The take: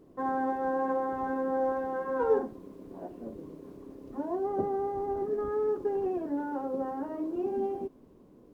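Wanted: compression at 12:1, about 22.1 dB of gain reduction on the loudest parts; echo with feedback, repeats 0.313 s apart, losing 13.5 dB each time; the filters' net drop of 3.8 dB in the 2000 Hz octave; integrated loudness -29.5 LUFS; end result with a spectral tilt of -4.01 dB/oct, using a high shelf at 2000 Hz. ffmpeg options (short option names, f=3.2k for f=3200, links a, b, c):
-af "highshelf=f=2k:g=5,equalizer=f=2k:t=o:g=-8.5,acompressor=threshold=-43dB:ratio=12,aecho=1:1:313|626:0.211|0.0444,volume=17dB"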